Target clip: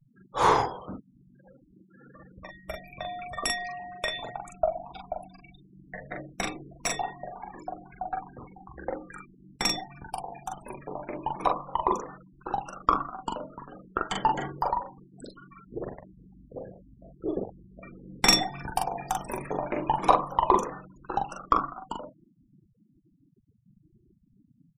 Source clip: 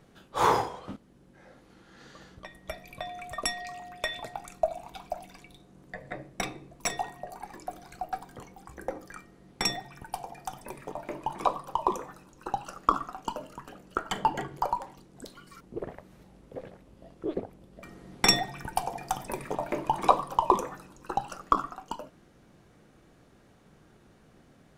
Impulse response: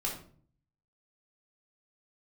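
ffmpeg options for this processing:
-af "aecho=1:1:16|42:0.178|0.708,aeval=exprs='0.708*(cos(1*acos(clip(val(0)/0.708,-1,1)))-cos(1*PI/2))+0.02*(cos(6*acos(clip(val(0)/0.708,-1,1)))-cos(6*PI/2))':channel_layout=same,afftfilt=real='re*gte(hypot(re,im),0.00891)':imag='im*gte(hypot(re,im),0.00891)':win_size=1024:overlap=0.75"

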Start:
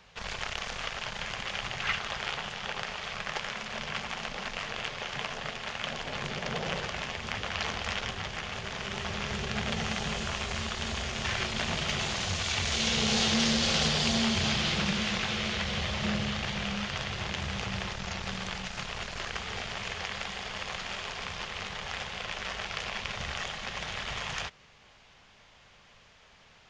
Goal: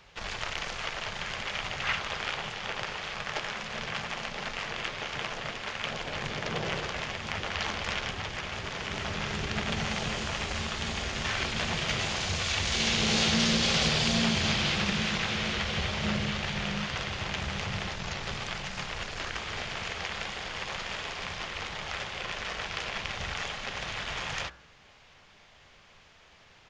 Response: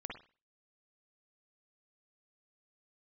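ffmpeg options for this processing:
-filter_complex "[0:a]asplit=2[link_01][link_02];[link_02]asetrate=33038,aresample=44100,atempo=1.33484,volume=-5dB[link_03];[link_01][link_03]amix=inputs=2:normalize=0,bandreject=frequency=63.28:width_type=h:width=4,bandreject=frequency=126.56:width_type=h:width=4,bandreject=frequency=189.84:width_type=h:width=4,bandreject=frequency=253.12:width_type=h:width=4,bandreject=frequency=316.4:width_type=h:width=4,bandreject=frequency=379.68:width_type=h:width=4,bandreject=frequency=442.96:width_type=h:width=4,bandreject=frequency=506.24:width_type=h:width=4,bandreject=frequency=569.52:width_type=h:width=4,bandreject=frequency=632.8:width_type=h:width=4,bandreject=frequency=696.08:width_type=h:width=4,bandreject=frequency=759.36:width_type=h:width=4,bandreject=frequency=822.64:width_type=h:width=4,bandreject=frequency=885.92:width_type=h:width=4,bandreject=frequency=949.2:width_type=h:width=4,bandreject=frequency=1012.48:width_type=h:width=4,bandreject=frequency=1075.76:width_type=h:width=4,bandreject=frequency=1139.04:width_type=h:width=4,bandreject=frequency=1202.32:width_type=h:width=4,bandreject=frequency=1265.6:width_type=h:width=4,bandreject=frequency=1328.88:width_type=h:width=4,bandreject=frequency=1392.16:width_type=h:width=4,bandreject=frequency=1455.44:width_type=h:width=4,bandreject=frequency=1518.72:width_type=h:width=4,bandreject=frequency=1582:width_type=h:width=4,bandreject=frequency=1645.28:width_type=h:width=4,bandreject=frequency=1708.56:width_type=h:width=4"

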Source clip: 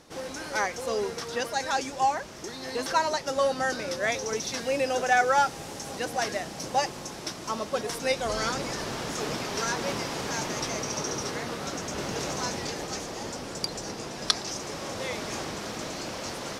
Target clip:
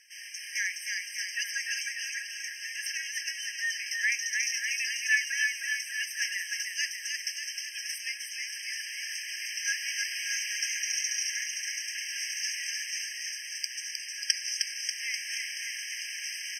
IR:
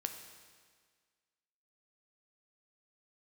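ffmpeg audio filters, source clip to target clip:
-filter_complex "[0:a]asettb=1/sr,asplit=3[link_01][link_02][link_03];[link_01]atrim=end=7.864[link_04];[link_02]atrim=start=7.86:end=9.65,asetpts=PTS-STARTPTS,afade=type=in:duration=0.004:curve=qsin,afade=type=out:start_time=1.786:duration=0.004:curve=qsin,acompressor=threshold=-30dB:ratio=6[link_05];[link_03]atrim=start=9.646[link_06];[link_04][link_05]acrossfade=duration=0.004:curve1=hsin:curve2=qsin[link_07];[link_07][link_06]acrossfade=duration=0.004:curve1=qsin:curve2=hsin,aecho=1:1:310|589|840.1|1066|1269:0.631|0.398|0.251|0.158|0.1,afftfilt=real='re*eq(mod(floor(b*sr/1024/1600),2),1)':imag='im*eq(mod(floor(b*sr/1024/1600),2),1)':win_size=1024:overlap=0.75,volume=3dB"

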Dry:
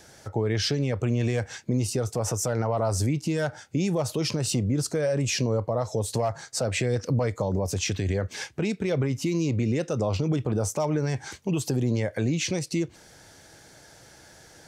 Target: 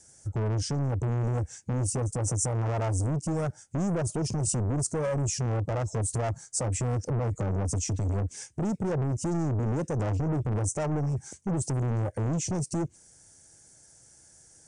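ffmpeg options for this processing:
ffmpeg -i in.wav -af "afwtdn=0.0447,lowshelf=frequency=260:gain=9.5,asoftclip=type=tanh:threshold=-25.5dB,aexciter=amount=8.5:drive=6.9:freq=5900" -ar 32000 -c:a mp2 -b:a 192k out.mp2

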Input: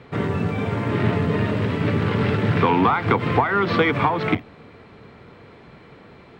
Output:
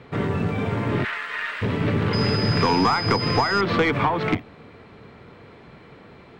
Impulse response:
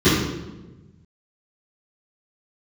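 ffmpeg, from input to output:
-filter_complex "[0:a]asplit=3[link_01][link_02][link_03];[link_01]afade=type=out:start_time=1.03:duration=0.02[link_04];[link_02]highpass=frequency=1600:width_type=q:width=2.1,afade=type=in:start_time=1.03:duration=0.02,afade=type=out:start_time=1.61:duration=0.02[link_05];[link_03]afade=type=in:start_time=1.61:duration=0.02[link_06];[link_04][link_05][link_06]amix=inputs=3:normalize=0,asettb=1/sr,asplit=3[link_07][link_08][link_09];[link_07]atrim=end=2.134[link_10];[link_08]atrim=start=2.13:end=3.61,asetpts=PTS-STARTPTS,afade=type=in:duration=0.004:curve=qsin,afade=type=out:start_time=1.476:duration=0.004:curve=qsin,aeval=exprs='val(0)+0.0447*sin(2*PI*5000*n/s)':channel_layout=same[link_11];[link_09]atrim=start=3.606[link_12];[link_10][link_11]acrossfade=duration=0.004:curve1=hsin:curve2=qsin[link_13];[link_13][link_12]acrossfade=duration=0.004:curve1=qsin:curve2=hsin,aeval=exprs='(tanh(3.55*val(0)+0.2)-tanh(0.2))/3.55':channel_layout=same"

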